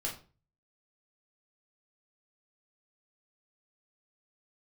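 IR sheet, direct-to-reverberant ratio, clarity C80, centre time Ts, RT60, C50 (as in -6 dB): -3.5 dB, 14.0 dB, 24 ms, 0.35 s, 8.5 dB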